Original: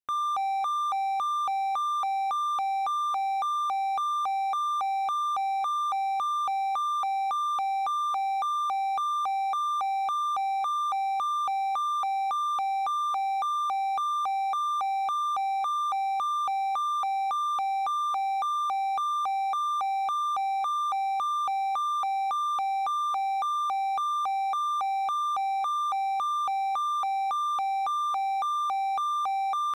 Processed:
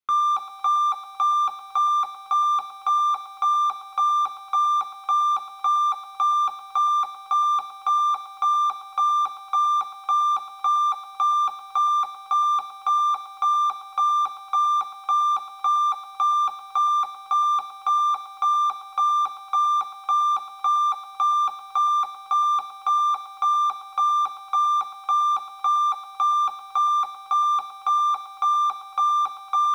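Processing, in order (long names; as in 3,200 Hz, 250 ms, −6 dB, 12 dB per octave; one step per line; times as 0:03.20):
stylus tracing distortion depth 0.037 ms
convolution reverb, pre-delay 3 ms, DRR 4 dB
feedback echo at a low word length 114 ms, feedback 55%, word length 8 bits, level −13 dB
level −2.5 dB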